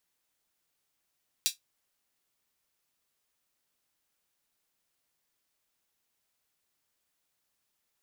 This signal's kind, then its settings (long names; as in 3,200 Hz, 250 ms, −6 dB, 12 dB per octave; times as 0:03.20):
closed synth hi-hat, high-pass 3,700 Hz, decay 0.14 s